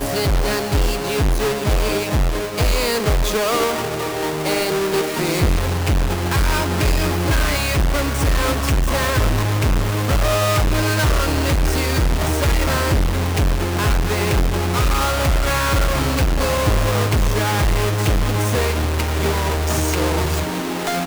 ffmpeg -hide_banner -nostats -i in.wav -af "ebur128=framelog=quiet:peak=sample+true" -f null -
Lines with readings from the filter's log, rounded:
Integrated loudness:
  I:         -19.1 LUFS
  Threshold: -29.1 LUFS
Loudness range:
  LRA:         1.4 LU
  Threshold: -39.0 LUFS
  LRA low:   -19.8 LUFS
  LRA high:  -18.4 LUFS
Sample peak:
  Peak:      -10.7 dBFS
True peak:
  Peak:       -9.8 dBFS